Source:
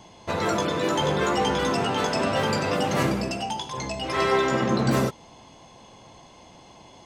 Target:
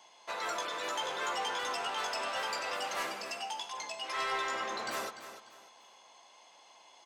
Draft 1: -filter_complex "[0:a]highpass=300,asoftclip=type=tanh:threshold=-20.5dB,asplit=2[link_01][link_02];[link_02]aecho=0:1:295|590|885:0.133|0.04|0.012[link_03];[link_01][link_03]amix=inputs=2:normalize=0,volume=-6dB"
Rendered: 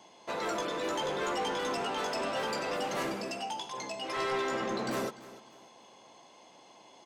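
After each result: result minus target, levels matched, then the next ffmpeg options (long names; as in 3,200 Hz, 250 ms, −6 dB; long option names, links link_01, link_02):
250 Hz band +11.5 dB; echo-to-direct −6 dB
-filter_complex "[0:a]highpass=830,asoftclip=type=tanh:threshold=-20.5dB,asplit=2[link_01][link_02];[link_02]aecho=0:1:295|590|885:0.133|0.04|0.012[link_03];[link_01][link_03]amix=inputs=2:normalize=0,volume=-6dB"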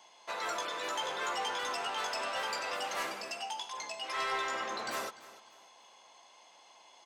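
echo-to-direct −6 dB
-filter_complex "[0:a]highpass=830,asoftclip=type=tanh:threshold=-20.5dB,asplit=2[link_01][link_02];[link_02]aecho=0:1:295|590|885:0.266|0.0798|0.0239[link_03];[link_01][link_03]amix=inputs=2:normalize=0,volume=-6dB"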